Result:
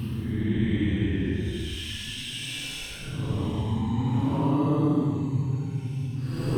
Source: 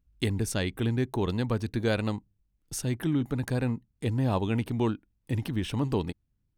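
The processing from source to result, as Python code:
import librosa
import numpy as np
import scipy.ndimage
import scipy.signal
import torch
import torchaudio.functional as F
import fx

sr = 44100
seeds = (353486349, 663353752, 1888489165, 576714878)

y = fx.reverse_delay(x, sr, ms=100, wet_db=-13)
y = fx.paulstretch(y, sr, seeds[0], factor=17.0, window_s=0.05, from_s=5.54)
y = y * librosa.db_to_amplitude(2.0)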